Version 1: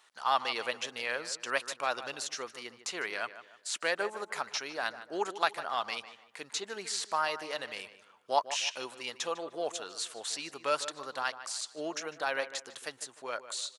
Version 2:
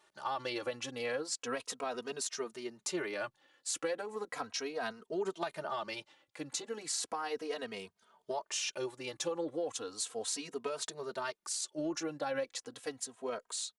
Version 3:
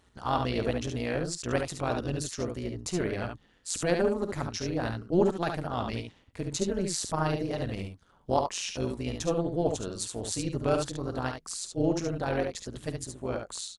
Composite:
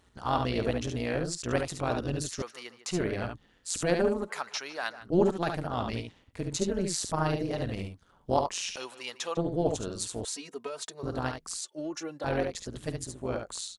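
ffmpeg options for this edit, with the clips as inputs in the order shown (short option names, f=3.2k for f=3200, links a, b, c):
-filter_complex "[0:a]asplit=3[a][b][c];[1:a]asplit=2[d][e];[2:a]asplit=6[f][g][h][i][j][k];[f]atrim=end=2.422[l];[a]atrim=start=2.418:end=2.912[m];[g]atrim=start=2.908:end=4.3[n];[b]atrim=start=4.2:end=5.1[o];[h]atrim=start=5:end=8.762[p];[c]atrim=start=8.758:end=9.372[q];[i]atrim=start=9.368:end=10.252[r];[d]atrim=start=10.248:end=11.032[s];[j]atrim=start=11.028:end=11.602[t];[e]atrim=start=11.598:end=12.242[u];[k]atrim=start=12.238[v];[l][m]acrossfade=d=0.004:c1=hsin:c2=hsin[w];[w][n]acrossfade=d=0.004:c1=hsin:c2=hsin[x];[x][o]acrossfade=d=0.1:c1=tri:c2=tri[y];[y][p]acrossfade=d=0.1:c1=tri:c2=tri[z];[z][q]acrossfade=d=0.004:c1=hsin:c2=hsin[aa];[aa][r]acrossfade=d=0.004:c1=hsin:c2=hsin[ab];[ab][s]acrossfade=d=0.004:c1=hsin:c2=hsin[ac];[ac][t]acrossfade=d=0.004:c1=hsin:c2=hsin[ad];[ad][u]acrossfade=d=0.004:c1=hsin:c2=hsin[ae];[ae][v]acrossfade=d=0.004:c1=hsin:c2=hsin"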